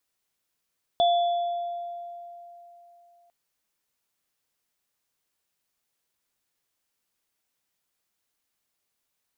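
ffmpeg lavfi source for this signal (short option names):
-f lavfi -i "aevalsrc='0.141*pow(10,-3*t/3.35)*sin(2*PI*694*t)+0.0473*pow(10,-3*t/1.4)*sin(2*PI*3450*t)':d=2.3:s=44100"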